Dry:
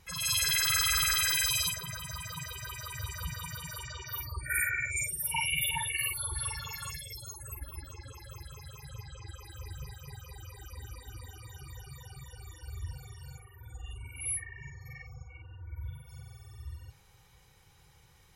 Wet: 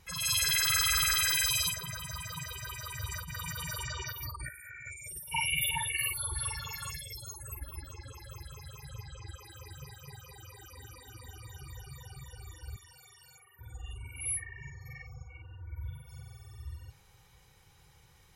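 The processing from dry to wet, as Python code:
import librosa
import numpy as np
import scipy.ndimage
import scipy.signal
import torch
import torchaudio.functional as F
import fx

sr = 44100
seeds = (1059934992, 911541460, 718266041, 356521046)

y = fx.over_compress(x, sr, threshold_db=-42.0, ratio=-1.0, at=(3.1, 5.31), fade=0.02)
y = fx.highpass(y, sr, hz=110.0, slope=12, at=(9.36, 11.26))
y = fx.highpass(y, sr, hz=1300.0, slope=6, at=(12.76, 13.59))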